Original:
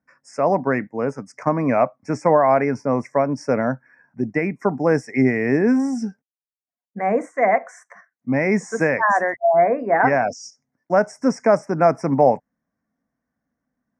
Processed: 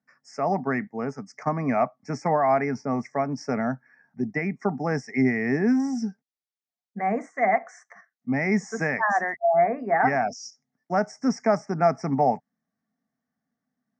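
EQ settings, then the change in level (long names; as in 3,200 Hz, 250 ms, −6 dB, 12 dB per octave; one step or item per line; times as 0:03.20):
notch filter 1,000 Hz, Q 5
dynamic equaliser 500 Hz, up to −5 dB, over −29 dBFS, Q 3
loudspeaker in its box 160–6,300 Hz, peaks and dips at 320 Hz −10 dB, 540 Hz −10 dB, 1,500 Hz −6 dB, 2,600 Hz −8 dB
0.0 dB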